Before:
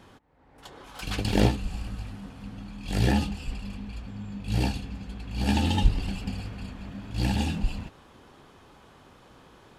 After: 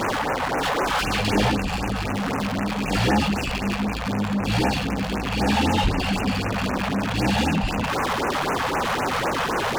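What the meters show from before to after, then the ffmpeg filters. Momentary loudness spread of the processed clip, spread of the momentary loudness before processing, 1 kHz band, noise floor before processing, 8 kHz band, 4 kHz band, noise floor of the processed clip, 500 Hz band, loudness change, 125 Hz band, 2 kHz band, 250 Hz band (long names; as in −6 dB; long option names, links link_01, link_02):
5 LU, 16 LU, +15.0 dB, −55 dBFS, +10.0 dB, +9.5 dB, −27 dBFS, +11.0 dB, +6.5 dB, +3.0 dB, +14.0 dB, +7.5 dB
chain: -filter_complex "[0:a]aeval=exprs='val(0)+0.5*0.0299*sgn(val(0))':channel_layout=same,asplit=2[link_01][link_02];[link_02]highpass=frequency=720:poles=1,volume=32dB,asoftclip=type=tanh:threshold=-7dB[link_03];[link_01][link_03]amix=inputs=2:normalize=0,lowpass=frequency=1600:poles=1,volume=-6dB,afftfilt=real='re*(1-between(b*sr/1024,280*pow(4200/280,0.5+0.5*sin(2*PI*3.9*pts/sr))/1.41,280*pow(4200/280,0.5+0.5*sin(2*PI*3.9*pts/sr))*1.41))':imag='im*(1-between(b*sr/1024,280*pow(4200/280,0.5+0.5*sin(2*PI*3.9*pts/sr))/1.41,280*pow(4200/280,0.5+0.5*sin(2*PI*3.9*pts/sr))*1.41))':win_size=1024:overlap=0.75,volume=-3dB"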